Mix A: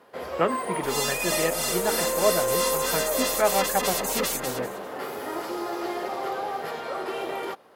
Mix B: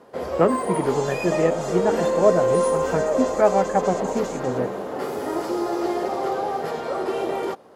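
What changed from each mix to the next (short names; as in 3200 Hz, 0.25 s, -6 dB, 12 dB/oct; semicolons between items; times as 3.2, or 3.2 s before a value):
first sound: add bell 7000 Hz +12.5 dB 1.8 oct; second sound: add ladder low-pass 7400 Hz, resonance 70%; master: add tilt shelf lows +9 dB, about 1300 Hz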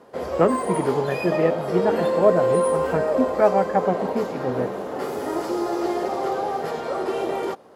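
second sound: muted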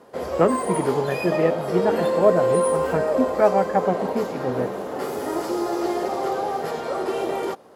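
master: add high shelf 6500 Hz +5 dB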